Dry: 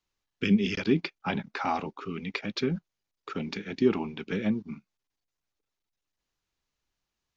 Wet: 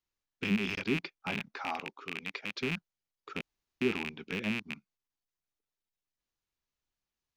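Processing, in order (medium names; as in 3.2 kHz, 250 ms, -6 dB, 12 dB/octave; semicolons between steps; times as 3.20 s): rattle on loud lows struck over -36 dBFS, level -15 dBFS; 1.60–2.63 s: bass shelf 190 Hz -10.5 dB; 3.41–3.81 s: room tone; trim -7.5 dB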